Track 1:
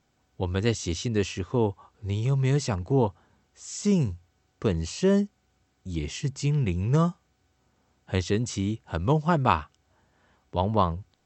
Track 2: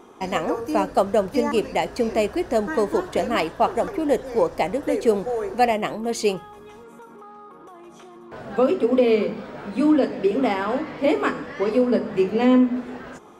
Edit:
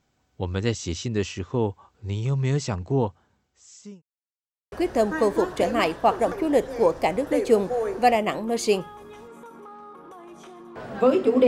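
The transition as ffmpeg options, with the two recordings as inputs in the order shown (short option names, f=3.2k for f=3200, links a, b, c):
-filter_complex "[0:a]apad=whole_dur=11.47,atrim=end=11.47,asplit=2[a][b];[a]atrim=end=4.02,asetpts=PTS-STARTPTS,afade=t=out:st=2.96:d=1.06[c];[b]atrim=start=4.02:end=4.72,asetpts=PTS-STARTPTS,volume=0[d];[1:a]atrim=start=2.28:end=9.03,asetpts=PTS-STARTPTS,afade=t=in:d=0.004:c=hsin[e];[c][d][e]concat=n=3:v=0:a=1"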